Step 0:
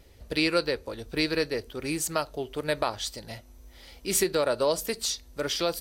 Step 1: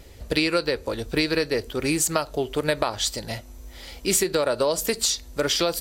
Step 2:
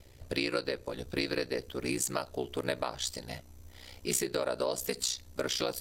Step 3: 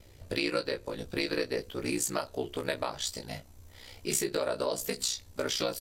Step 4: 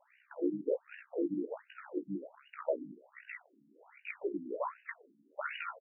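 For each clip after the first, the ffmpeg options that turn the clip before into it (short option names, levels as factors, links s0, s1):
-af "equalizer=f=7300:w=7.1:g=6,acompressor=threshold=0.0447:ratio=6,volume=2.66"
-af "aeval=exprs='val(0)*sin(2*PI*31*n/s)':c=same,volume=0.473"
-filter_complex "[0:a]asplit=2[s0][s1];[s1]adelay=20,volume=0.501[s2];[s0][s2]amix=inputs=2:normalize=0"
-filter_complex "[0:a]asplit=2[s0][s1];[s1]asoftclip=type=tanh:threshold=0.0562,volume=0.299[s2];[s0][s2]amix=inputs=2:normalize=0,afftfilt=real='re*between(b*sr/1024,230*pow(2100/230,0.5+0.5*sin(2*PI*1.3*pts/sr))/1.41,230*pow(2100/230,0.5+0.5*sin(2*PI*1.3*pts/sr))*1.41)':imag='im*between(b*sr/1024,230*pow(2100/230,0.5+0.5*sin(2*PI*1.3*pts/sr))/1.41,230*pow(2100/230,0.5+0.5*sin(2*PI*1.3*pts/sr))*1.41)':win_size=1024:overlap=0.75,volume=1.12"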